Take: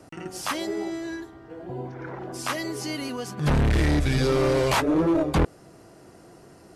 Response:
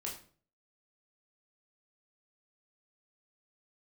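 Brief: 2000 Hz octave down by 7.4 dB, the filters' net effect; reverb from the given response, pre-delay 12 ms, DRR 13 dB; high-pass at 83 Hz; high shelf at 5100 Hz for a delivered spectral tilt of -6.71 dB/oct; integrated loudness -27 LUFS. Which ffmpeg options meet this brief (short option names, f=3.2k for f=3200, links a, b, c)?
-filter_complex "[0:a]highpass=83,equalizer=f=2k:t=o:g=-8.5,highshelf=f=5.1k:g=-6,asplit=2[a][b];[1:a]atrim=start_sample=2205,adelay=12[c];[b][c]afir=irnorm=-1:irlink=0,volume=-12.5dB[d];[a][d]amix=inputs=2:normalize=0,volume=-1dB"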